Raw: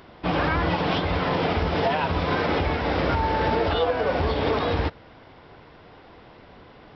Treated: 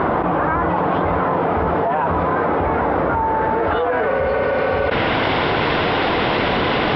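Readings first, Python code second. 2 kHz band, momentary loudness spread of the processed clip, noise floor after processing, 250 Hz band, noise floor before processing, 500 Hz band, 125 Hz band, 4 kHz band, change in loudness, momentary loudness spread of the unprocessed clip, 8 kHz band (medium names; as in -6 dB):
+7.5 dB, 1 LU, -19 dBFS, +6.0 dB, -49 dBFS, +7.0 dB, +2.5 dB, +5.5 dB, +5.5 dB, 2 LU, no reading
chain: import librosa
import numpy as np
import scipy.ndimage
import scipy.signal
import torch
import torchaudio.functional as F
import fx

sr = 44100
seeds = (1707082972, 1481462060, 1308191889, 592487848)

y = fx.spec_repair(x, sr, seeds[0], start_s=4.13, length_s=0.74, low_hz=300.0, high_hz=4000.0, source='before')
y = fx.low_shelf(y, sr, hz=96.0, db=-10.5)
y = fx.filter_sweep_lowpass(y, sr, from_hz=1200.0, to_hz=3400.0, start_s=3.24, end_s=5.3, q=1.4)
y = fx.env_flatten(y, sr, amount_pct=100)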